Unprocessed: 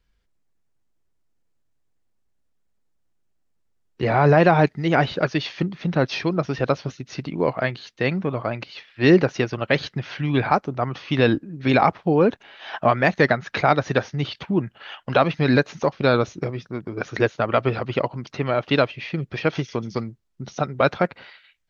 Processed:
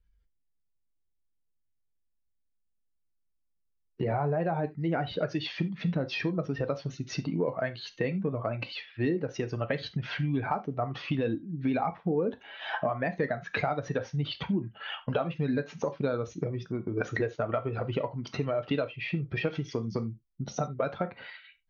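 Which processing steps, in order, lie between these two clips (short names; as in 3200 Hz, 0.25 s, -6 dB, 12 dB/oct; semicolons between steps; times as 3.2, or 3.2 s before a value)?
spectral contrast raised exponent 1.5; compressor 6:1, threshold -27 dBFS, peak gain reduction 16.5 dB; non-linear reverb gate 0.11 s falling, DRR 8.5 dB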